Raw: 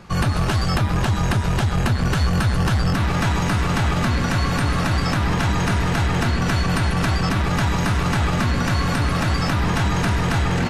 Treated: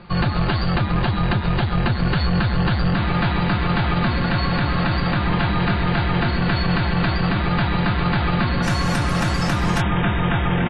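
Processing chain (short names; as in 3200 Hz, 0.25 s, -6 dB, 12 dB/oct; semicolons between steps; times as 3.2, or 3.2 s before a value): comb 5.7 ms, depth 37%; brick-wall FIR low-pass 4800 Hz, from 8.62 s 12000 Hz, from 9.8 s 3800 Hz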